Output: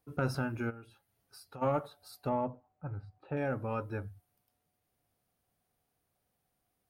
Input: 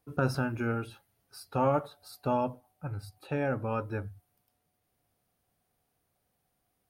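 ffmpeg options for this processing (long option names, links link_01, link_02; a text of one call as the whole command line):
ffmpeg -i in.wav -filter_complex "[0:a]asplit=3[link_01][link_02][link_03];[link_01]afade=type=out:start_time=0.69:duration=0.02[link_04];[link_02]acompressor=threshold=-49dB:ratio=2.5,afade=type=in:start_time=0.69:duration=0.02,afade=type=out:start_time=1.61:duration=0.02[link_05];[link_03]afade=type=in:start_time=1.61:duration=0.02[link_06];[link_04][link_05][link_06]amix=inputs=3:normalize=0,asettb=1/sr,asplit=3[link_07][link_08][link_09];[link_07]atrim=end=2.294[link_10];[link_08]atrim=start=2.29:end=3.37,asetpts=PTS-STARTPTS,afade=type=in:duration=0.004:curve=qsin,afade=type=out:start_time=1.076:duration=0.004:curve=qsin,lowpass=1600[link_11];[link_09]atrim=start=3.366[link_12];[link_10][link_11]acrossfade=duration=0.004:curve1=hsin:curve2=qsin[link_13];[link_13][link_12]acrossfade=duration=0.004:curve1=qsin:curve2=hsin,asoftclip=type=tanh:threshold=-15.5dB,volume=-3dB" out.wav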